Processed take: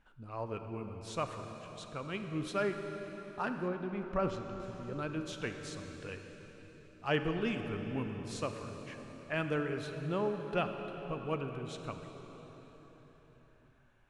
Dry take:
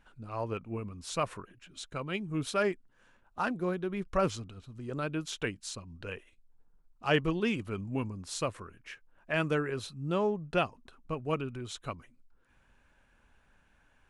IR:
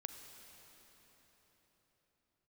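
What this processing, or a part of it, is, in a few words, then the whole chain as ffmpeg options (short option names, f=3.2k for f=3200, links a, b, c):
swimming-pool hall: -filter_complex "[1:a]atrim=start_sample=2205[a];[0:a][a]afir=irnorm=-1:irlink=0,highshelf=f=5.4k:g=-7,asettb=1/sr,asplit=3[b][c][d];[b]atrim=end=3.684[e];[c]atrim=start=3.68:end=4.6,asetpts=PTS-STARTPTS,afade=t=in:d=0.004:c=qsin,afade=t=out:st=0.916:d=0.004:c=qsin,aemphasis=mode=reproduction:type=50kf[f];[d]atrim=start=4.596[g];[e][f]acrossfade=d=0.004:c1=hsin:c2=qsin[h];[h][g]acrossfade=d=0.004:c1=qsin:c2=hsin"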